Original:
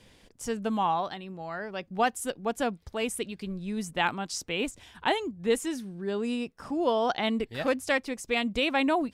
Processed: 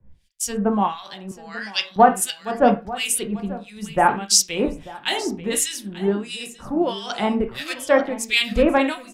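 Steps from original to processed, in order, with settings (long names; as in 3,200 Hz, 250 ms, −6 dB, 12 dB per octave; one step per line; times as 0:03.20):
convolution reverb RT60 0.40 s, pre-delay 5 ms, DRR 4.5 dB
two-band tremolo in antiphase 1.5 Hz, depth 100%, crossover 1,600 Hz
high-shelf EQ 5,900 Hz +4.5 dB
in parallel at +1 dB: downward compressor, threshold −40 dBFS, peak gain reduction 20 dB
0:01.31–0:01.96: on the sum: meter weighting curve ITU-R 468
single-tap delay 891 ms −11.5 dB
boost into a limiter +14 dB
multiband upward and downward expander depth 100%
level −7 dB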